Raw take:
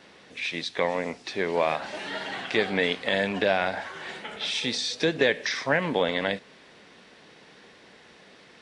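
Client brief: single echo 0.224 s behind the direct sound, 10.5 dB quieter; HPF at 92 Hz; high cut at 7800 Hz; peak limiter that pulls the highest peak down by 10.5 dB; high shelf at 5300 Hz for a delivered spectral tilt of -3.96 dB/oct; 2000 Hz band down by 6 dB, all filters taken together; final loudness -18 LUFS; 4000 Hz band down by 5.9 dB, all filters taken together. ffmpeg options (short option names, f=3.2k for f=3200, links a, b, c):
-af "highpass=92,lowpass=7.8k,equalizer=f=2k:t=o:g=-6.5,equalizer=f=4k:t=o:g=-7,highshelf=f=5.3k:g=5.5,alimiter=limit=-20.5dB:level=0:latency=1,aecho=1:1:224:0.299,volume=15dB"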